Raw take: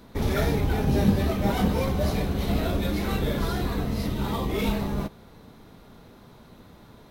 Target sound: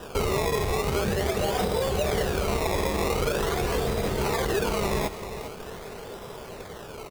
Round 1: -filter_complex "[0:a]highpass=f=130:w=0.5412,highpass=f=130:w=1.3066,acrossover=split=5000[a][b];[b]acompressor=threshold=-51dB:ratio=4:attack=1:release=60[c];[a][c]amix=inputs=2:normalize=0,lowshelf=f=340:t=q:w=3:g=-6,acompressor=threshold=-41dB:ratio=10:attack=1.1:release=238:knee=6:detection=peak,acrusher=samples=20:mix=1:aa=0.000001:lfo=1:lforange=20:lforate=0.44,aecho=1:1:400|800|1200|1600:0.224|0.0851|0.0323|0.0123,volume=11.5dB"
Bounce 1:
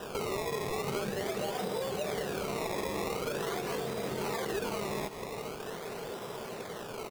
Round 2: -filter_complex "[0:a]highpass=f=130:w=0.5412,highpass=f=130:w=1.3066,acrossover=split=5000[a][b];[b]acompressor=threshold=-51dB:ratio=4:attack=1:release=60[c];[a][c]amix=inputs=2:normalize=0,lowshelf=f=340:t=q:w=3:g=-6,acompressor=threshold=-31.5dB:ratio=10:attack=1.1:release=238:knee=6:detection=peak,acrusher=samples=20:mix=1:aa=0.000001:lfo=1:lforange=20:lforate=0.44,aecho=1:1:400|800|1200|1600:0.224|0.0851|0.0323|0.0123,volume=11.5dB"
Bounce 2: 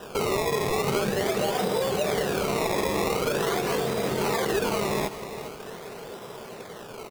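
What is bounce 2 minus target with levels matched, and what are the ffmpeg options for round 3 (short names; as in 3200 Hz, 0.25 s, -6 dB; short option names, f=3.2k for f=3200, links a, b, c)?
125 Hz band -4.5 dB
-filter_complex "[0:a]acrossover=split=5000[a][b];[b]acompressor=threshold=-51dB:ratio=4:attack=1:release=60[c];[a][c]amix=inputs=2:normalize=0,lowshelf=f=340:t=q:w=3:g=-6,acompressor=threshold=-31.5dB:ratio=10:attack=1.1:release=238:knee=6:detection=peak,acrusher=samples=20:mix=1:aa=0.000001:lfo=1:lforange=20:lforate=0.44,aecho=1:1:400|800|1200|1600:0.224|0.0851|0.0323|0.0123,volume=11.5dB"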